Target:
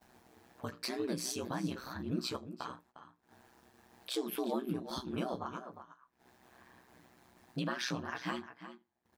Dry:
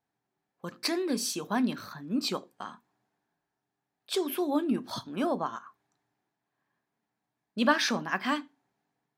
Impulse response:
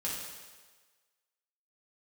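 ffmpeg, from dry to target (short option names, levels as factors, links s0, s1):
-filter_complex "[0:a]asplit=2[s0][s1];[s1]acompressor=mode=upward:threshold=0.0316:ratio=2.5,volume=0.891[s2];[s0][s2]amix=inputs=2:normalize=0,asplit=2[s3][s4];[s4]adelay=13,volume=0.596[s5];[s3][s5]amix=inputs=2:normalize=0,agate=range=0.1:threshold=0.002:ratio=16:detection=peak,alimiter=limit=0.119:level=0:latency=1:release=470,asplit=2[s6][s7];[s7]adelay=355.7,volume=0.282,highshelf=f=4000:g=-8[s8];[s6][s8]amix=inputs=2:normalize=0,aeval=exprs='val(0)*sin(2*PI*63*n/s)':c=same,volume=0.531"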